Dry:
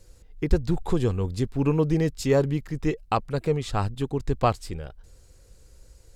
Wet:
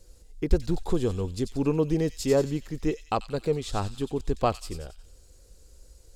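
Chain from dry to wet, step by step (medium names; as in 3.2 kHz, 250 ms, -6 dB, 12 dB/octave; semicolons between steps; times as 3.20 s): graphic EQ 125/1000/2000 Hz -7/-3/-5 dB; on a send: feedback echo behind a high-pass 91 ms, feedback 49%, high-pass 3.4 kHz, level -5 dB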